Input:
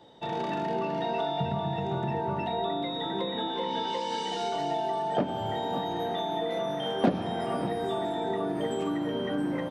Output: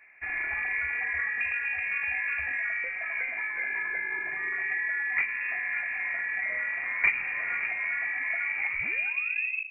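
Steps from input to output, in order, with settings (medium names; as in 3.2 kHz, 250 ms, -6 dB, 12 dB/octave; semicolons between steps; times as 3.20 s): tape stop on the ending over 1.12 s; de-hum 50.36 Hz, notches 15; frequency inversion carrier 2.6 kHz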